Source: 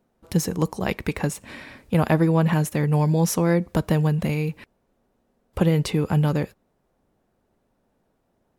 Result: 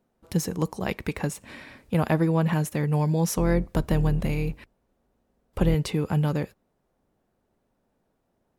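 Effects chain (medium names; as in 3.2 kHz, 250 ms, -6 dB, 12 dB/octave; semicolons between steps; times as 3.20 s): 3.36–5.75 s: octave divider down 2 oct, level -2 dB; trim -3.5 dB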